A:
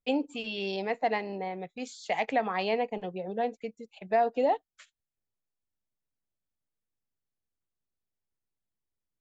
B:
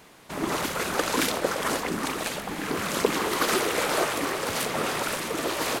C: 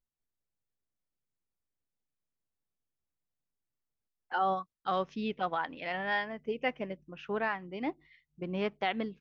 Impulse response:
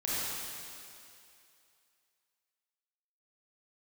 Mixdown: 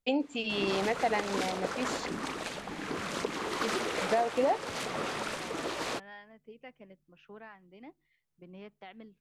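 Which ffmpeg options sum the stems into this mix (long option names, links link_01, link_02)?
-filter_complex "[0:a]volume=2.5dB,asplit=3[link_01][link_02][link_03];[link_01]atrim=end=2.06,asetpts=PTS-STARTPTS,afade=type=out:start_time=2.056:duration=0.004:curve=hsin[link_04];[link_02]atrim=start=2.06:end=3.61,asetpts=PTS-STARTPTS,volume=0[link_05];[link_03]atrim=start=3.61,asetpts=PTS-STARTPTS,afade=type=in:duration=0.004:curve=hsin[link_06];[link_04][link_05][link_06]concat=n=3:v=0:a=1[link_07];[1:a]lowpass=7000,adelay=200,volume=-7dB[link_08];[2:a]acrossover=split=210[link_09][link_10];[link_10]acompressor=threshold=-40dB:ratio=1.5[link_11];[link_09][link_11]amix=inputs=2:normalize=0,volume=-13dB[link_12];[link_07][link_08][link_12]amix=inputs=3:normalize=0,alimiter=limit=-18.5dB:level=0:latency=1:release=301"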